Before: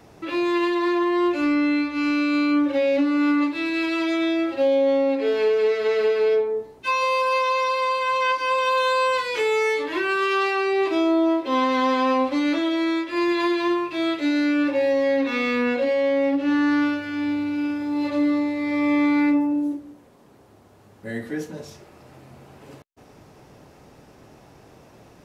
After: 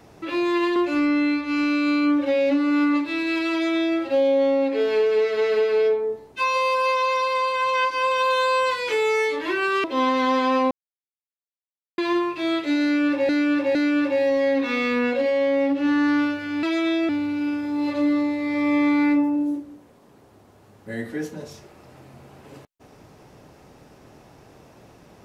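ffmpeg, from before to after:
ffmpeg -i in.wav -filter_complex "[0:a]asplit=9[link_01][link_02][link_03][link_04][link_05][link_06][link_07][link_08][link_09];[link_01]atrim=end=0.762[link_10];[link_02]atrim=start=1.228:end=10.312[link_11];[link_03]atrim=start=11.388:end=12.26,asetpts=PTS-STARTPTS,afade=type=out:start_time=0.868:duration=0.004:curve=hsin[link_12];[link_04]atrim=start=12.26:end=13.53,asetpts=PTS-STARTPTS,volume=0[link_13];[link_05]atrim=start=13.53:end=14.842,asetpts=PTS-STARTPTS,afade=type=in:duration=0.004:curve=hsin[link_14];[link_06]atrim=start=14.378:end=14.842[link_15];[link_07]atrim=start=14.378:end=17.262[link_16];[link_08]atrim=start=3.988:end=4.452[link_17];[link_09]atrim=start=17.258[link_18];[link_10][link_11]acrossfade=duration=0.004:curve1=hsin:curve2=hsin[link_19];[link_12][link_13][link_14]concat=n=3:v=0:a=1[link_20];[link_19][link_20]acrossfade=duration=0.004:curve1=hsin:curve2=hsin[link_21];[link_21][link_15]acrossfade=duration=0.004:curve1=hsin:curve2=hsin[link_22];[link_22][link_16]acrossfade=duration=0.004:curve1=hsin:curve2=hsin[link_23];[link_23][link_17]acrossfade=duration=0.004:curve1=hsin:curve2=hsin[link_24];[link_24][link_18]acrossfade=duration=0.004:curve1=hsin:curve2=hsin" out.wav

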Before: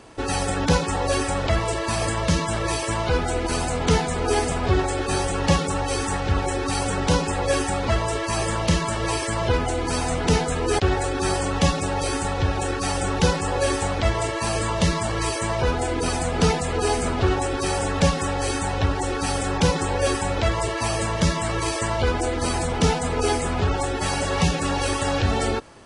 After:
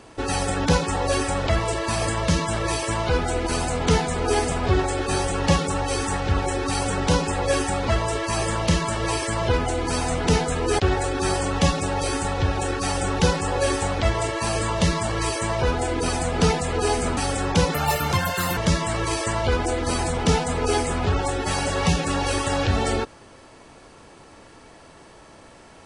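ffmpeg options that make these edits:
ffmpeg -i in.wav -filter_complex "[0:a]asplit=4[link_01][link_02][link_03][link_04];[link_01]atrim=end=17.172[link_05];[link_02]atrim=start=19.228:end=19.804[link_06];[link_03]atrim=start=19.8:end=21.12,asetpts=PTS-STARTPTS,asetrate=70119,aresample=44100,atrim=end_sample=36611,asetpts=PTS-STARTPTS[link_07];[link_04]atrim=start=21.116[link_08];[link_05][link_06]acrossfade=duration=0.004:curve1=hsin:curve2=hsin[link_09];[link_09][link_07]acrossfade=duration=0.004:curve1=hsin:curve2=hsin[link_10];[link_10][link_08]acrossfade=duration=0.004:curve1=hsin:curve2=hsin" out.wav

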